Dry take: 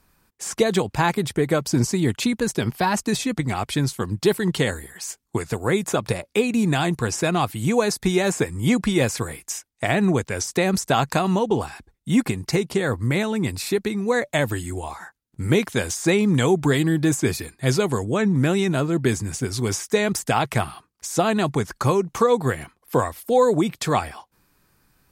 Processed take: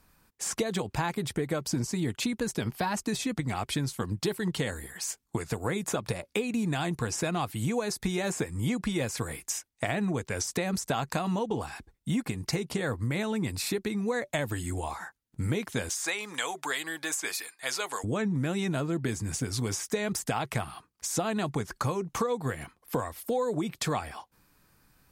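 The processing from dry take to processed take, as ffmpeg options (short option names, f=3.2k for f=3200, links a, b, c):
-filter_complex "[0:a]asettb=1/sr,asplit=3[a][b][c];[a]atrim=end=15.894[d];[b]atrim=start=15.89:end=18.04,asetpts=PTS-STARTPTS,afade=t=in:d=0.004:c=qsin,afade=t=out:st=2.146:d=0.004:c=qsin,highpass=910[e];[c]atrim=start=18.036[f];[d][e]acrossfade=d=0.004:c1=hsin:c2=qsin[g];[g][f]acrossfade=d=0.004:c1=qsin:c2=hsin,bandreject=f=380:w=12,acompressor=threshold=-26dB:ratio=4,volume=-1.5dB"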